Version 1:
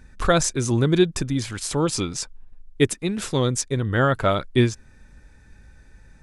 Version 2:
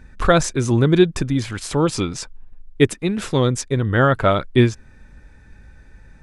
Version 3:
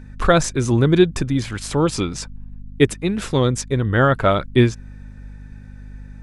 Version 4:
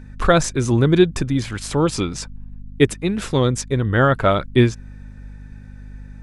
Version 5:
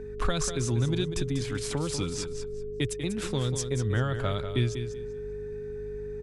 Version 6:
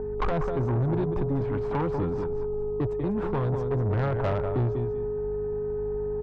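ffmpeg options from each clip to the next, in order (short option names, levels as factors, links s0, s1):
-af "bass=f=250:g=0,treble=f=4000:g=-7,volume=1.58"
-af "aeval=exprs='val(0)+0.0158*(sin(2*PI*50*n/s)+sin(2*PI*2*50*n/s)/2+sin(2*PI*3*50*n/s)/3+sin(2*PI*4*50*n/s)/4+sin(2*PI*5*50*n/s)/5)':c=same"
-af anull
-filter_complex "[0:a]acrossover=split=130|3000[s0][s1][s2];[s1]acompressor=threshold=0.0562:ratio=6[s3];[s0][s3][s2]amix=inputs=3:normalize=0,aeval=exprs='val(0)+0.0251*sin(2*PI*420*n/s)':c=same,aecho=1:1:193|386|579:0.355|0.071|0.0142,volume=0.531"
-af "lowpass=f=880:t=q:w=3.4,asoftclip=type=tanh:threshold=0.0422,volume=2"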